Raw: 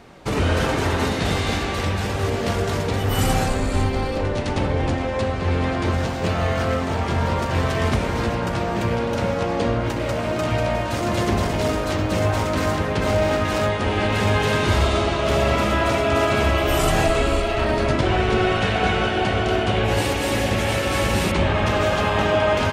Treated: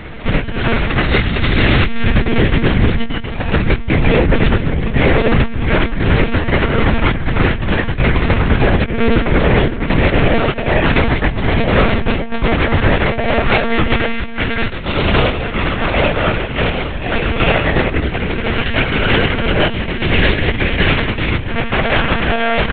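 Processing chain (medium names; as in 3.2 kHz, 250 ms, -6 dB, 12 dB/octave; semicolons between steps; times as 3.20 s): graphic EQ 125/500/1000/2000 Hz +8/-4/-5/+5 dB; compressor with a negative ratio -23 dBFS, ratio -0.5; doubling 21 ms -6.5 dB; monotone LPC vocoder at 8 kHz 230 Hz; loudness maximiser +11 dB; trim -1 dB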